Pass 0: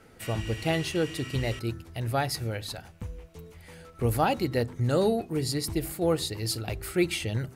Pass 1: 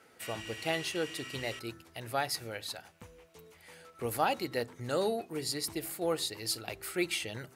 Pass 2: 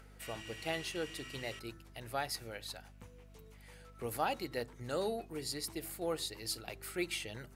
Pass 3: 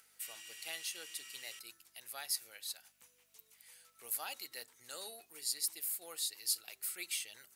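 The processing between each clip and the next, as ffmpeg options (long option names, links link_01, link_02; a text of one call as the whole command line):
ffmpeg -i in.wav -af "highpass=frequency=580:poles=1,volume=-2dB" out.wav
ffmpeg -i in.wav -af "acompressor=mode=upward:threshold=-54dB:ratio=2.5,aeval=exprs='val(0)+0.00282*(sin(2*PI*50*n/s)+sin(2*PI*2*50*n/s)/2+sin(2*PI*3*50*n/s)/3+sin(2*PI*4*50*n/s)/4+sin(2*PI*5*50*n/s)/5)':channel_layout=same,volume=-5dB" out.wav
ffmpeg -i in.wav -af "aderivative,volume=5.5dB" out.wav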